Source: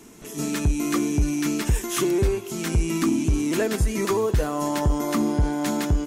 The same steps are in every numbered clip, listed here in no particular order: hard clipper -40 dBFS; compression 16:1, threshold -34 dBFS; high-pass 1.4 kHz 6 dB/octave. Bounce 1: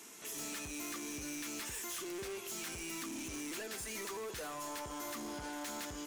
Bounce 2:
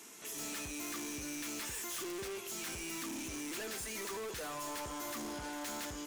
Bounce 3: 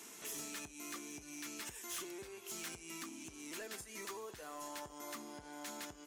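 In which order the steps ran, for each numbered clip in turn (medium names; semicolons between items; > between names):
high-pass > compression > hard clipper; high-pass > hard clipper > compression; compression > high-pass > hard clipper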